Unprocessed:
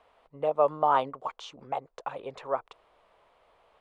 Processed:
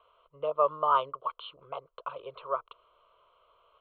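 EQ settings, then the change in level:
Chebyshev low-pass with heavy ripple 4,300 Hz, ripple 9 dB
parametric band 160 Hz +2.5 dB 0.42 octaves
phaser with its sweep stopped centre 1,200 Hz, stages 8
+4.5 dB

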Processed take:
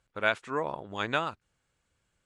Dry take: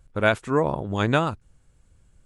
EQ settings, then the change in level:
resonant band-pass 3,400 Hz, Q 0.55
spectral tilt −2 dB per octave
0.0 dB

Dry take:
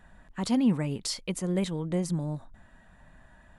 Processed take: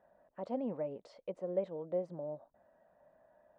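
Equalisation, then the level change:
resonant band-pass 580 Hz, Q 4.6
high-frequency loss of the air 71 metres
+3.5 dB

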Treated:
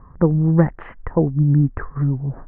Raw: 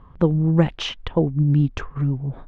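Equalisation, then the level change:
Chebyshev low-pass filter 1,900 Hz, order 5
+2.5 dB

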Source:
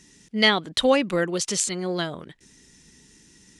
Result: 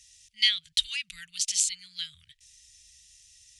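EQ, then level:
inverse Chebyshev band-stop filter 280–820 Hz, stop band 70 dB
low-shelf EQ 190 Hz −6 dB
0.0 dB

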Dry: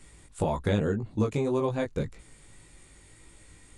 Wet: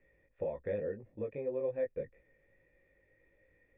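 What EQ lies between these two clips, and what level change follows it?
formant resonators in series e
0.0 dB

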